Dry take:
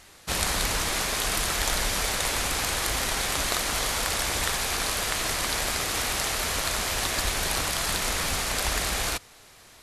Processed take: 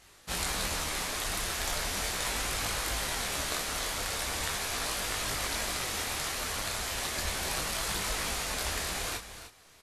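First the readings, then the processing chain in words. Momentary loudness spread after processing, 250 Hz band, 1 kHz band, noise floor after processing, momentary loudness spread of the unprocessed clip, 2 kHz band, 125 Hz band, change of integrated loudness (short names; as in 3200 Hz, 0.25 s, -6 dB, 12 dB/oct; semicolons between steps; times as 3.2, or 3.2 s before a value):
2 LU, -6.0 dB, -6.0 dB, -58 dBFS, 1 LU, -6.0 dB, -6.0 dB, -6.0 dB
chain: on a send: echo 0.299 s -11.5 dB; on the sum: detuned doubles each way 13 cents; gain -2.5 dB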